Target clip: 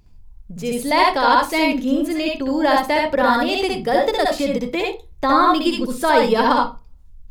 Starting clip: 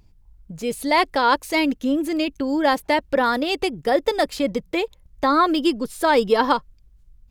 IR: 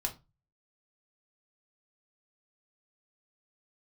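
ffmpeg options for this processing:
-filter_complex "[0:a]asplit=2[link_01][link_02];[1:a]atrim=start_sample=2205,adelay=63[link_03];[link_02][link_03]afir=irnorm=-1:irlink=0,volume=-2dB[link_04];[link_01][link_04]amix=inputs=2:normalize=0"

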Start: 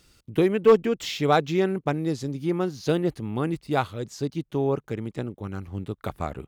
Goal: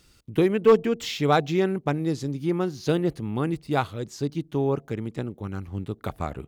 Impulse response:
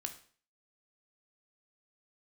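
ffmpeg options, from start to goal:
-filter_complex "[0:a]asplit=2[link_01][link_02];[link_02]asuperstop=centerf=1700:order=8:qfactor=0.57[link_03];[1:a]atrim=start_sample=2205,lowpass=1200[link_04];[link_03][link_04]afir=irnorm=-1:irlink=0,volume=-14.5dB[link_05];[link_01][link_05]amix=inputs=2:normalize=0"

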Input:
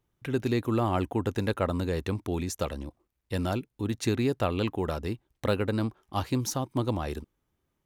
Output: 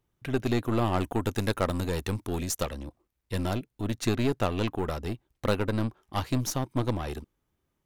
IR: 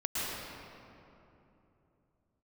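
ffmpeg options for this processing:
-filter_complex "[0:a]aeval=exprs='0.266*(cos(1*acos(clip(val(0)/0.266,-1,1)))-cos(1*PI/2))+0.0211*(cos(8*acos(clip(val(0)/0.266,-1,1)))-cos(8*PI/2))':channel_layout=same,asettb=1/sr,asplit=3[link_01][link_02][link_03];[link_01]atrim=end=1.004[link_04];[link_02]atrim=start=1:end=2.63,asetpts=PTS-STARTPTS,afade=type=in:duration=0.004:curve=qsin,afade=type=out:start_time=1.626:duration=0.004:curve=qsin,highshelf=frequency=4900:gain=8[link_05];[link_03]atrim=start=2.626[link_06];[link_04][link_05]acrossfade=duration=0.004:curve1=hsin:curve2=qsin[link_07];[link_07][link_06]acrossfade=duration=0.004:curve1=qsin:curve2=hsin"

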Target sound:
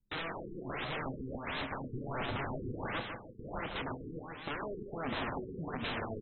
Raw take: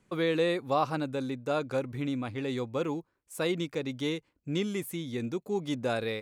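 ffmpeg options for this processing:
ffmpeg -i in.wav -filter_complex "[0:a]bandreject=frequency=123.5:width_type=h:width=4,bandreject=frequency=247:width_type=h:width=4,bandreject=frequency=370.5:width_type=h:width=4,bandreject=frequency=494:width_type=h:width=4,bandreject=frequency=617.5:width_type=h:width=4,bandreject=frequency=741:width_type=h:width=4,bandreject=frequency=864.5:width_type=h:width=4,bandreject=frequency=988:width_type=h:width=4,bandreject=frequency=1111.5:width_type=h:width=4,bandreject=frequency=1235:width_type=h:width=4,bandreject=frequency=1358.5:width_type=h:width=4,bandreject=frequency=1482:width_type=h:width=4,bandreject=frequency=1605.5:width_type=h:width=4,bandreject=frequency=1729:width_type=h:width=4,bandreject=frequency=1852.5:width_type=h:width=4,bandreject=frequency=1976:width_type=h:width=4,anlmdn=1.58,alimiter=level_in=0.5dB:limit=-24dB:level=0:latency=1:release=265,volume=-0.5dB,acontrast=52,aresample=16000,aeval=exprs='(mod(31.6*val(0)+1,2)-1)/31.6':channel_layout=same,aresample=44100,asplit=2[link_01][link_02];[link_02]adelay=30,volume=-13dB[link_03];[link_01][link_03]amix=inputs=2:normalize=0,asplit=2[link_04][link_05];[link_05]aecho=0:1:152|304|456|608|760|912|1064|1216:0.473|0.284|0.17|0.102|0.0613|0.0368|0.0221|0.0132[link_06];[link_04][link_06]amix=inputs=2:normalize=0,afftfilt=real='re*lt(b*sr/1024,460*pow(4200/460,0.5+0.5*sin(2*PI*1.4*pts/sr)))':imag='im*lt(b*sr/1024,460*pow(4200/460,0.5+0.5*sin(2*PI*1.4*pts/sr)))':win_size=1024:overlap=0.75,volume=-2dB" out.wav

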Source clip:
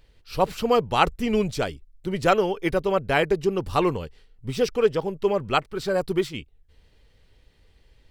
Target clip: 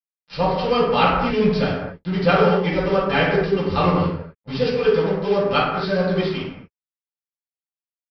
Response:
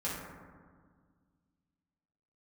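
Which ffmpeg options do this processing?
-filter_complex "[0:a]aemphasis=mode=production:type=75kf,aresample=11025,acrusher=bits=4:mix=0:aa=0.5,aresample=44100[link_01];[1:a]atrim=start_sample=2205,afade=type=out:start_time=0.32:duration=0.01,atrim=end_sample=14553[link_02];[link_01][link_02]afir=irnorm=-1:irlink=0,volume=-2dB"

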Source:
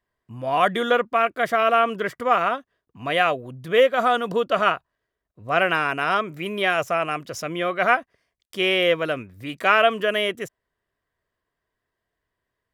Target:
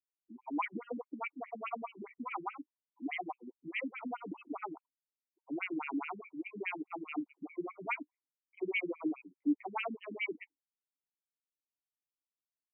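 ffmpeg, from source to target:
ffmpeg -i in.wav -filter_complex "[0:a]asplit=3[link_01][link_02][link_03];[link_01]bandpass=frequency=300:width_type=q:width=8,volume=0dB[link_04];[link_02]bandpass=frequency=870:width_type=q:width=8,volume=-6dB[link_05];[link_03]bandpass=frequency=2240:width_type=q:width=8,volume=-9dB[link_06];[link_04][link_05][link_06]amix=inputs=3:normalize=0,afftdn=noise_reduction=22:noise_floor=-56,afftfilt=real='re*between(b*sr/1024,220*pow(2300/220,0.5+0.5*sin(2*PI*4.8*pts/sr))/1.41,220*pow(2300/220,0.5+0.5*sin(2*PI*4.8*pts/sr))*1.41)':imag='im*between(b*sr/1024,220*pow(2300/220,0.5+0.5*sin(2*PI*4.8*pts/sr))/1.41,220*pow(2300/220,0.5+0.5*sin(2*PI*4.8*pts/sr))*1.41)':win_size=1024:overlap=0.75,volume=5.5dB" out.wav

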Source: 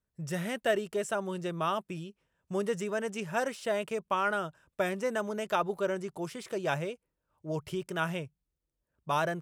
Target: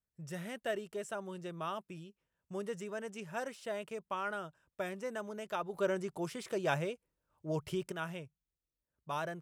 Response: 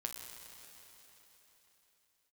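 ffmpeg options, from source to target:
-filter_complex "[0:a]asettb=1/sr,asplit=3[link_01][link_02][link_03];[link_01]atrim=end=5.744[link_04];[link_02]atrim=start=5.74:end=7.92,asetpts=PTS-STARTPTS,afade=type=in:duration=0.004:curve=qsin,afade=type=out:start_time=2.176:duration=0.004:curve=qsin,acontrast=80[link_05];[link_03]atrim=start=7.916[link_06];[link_04][link_05]acrossfade=duration=0.004:curve1=hsin:curve2=qsin[link_07];[link_07][link_06]acrossfade=duration=0.004:curve1=qsin:curve2=hsin,volume=-8.5dB"

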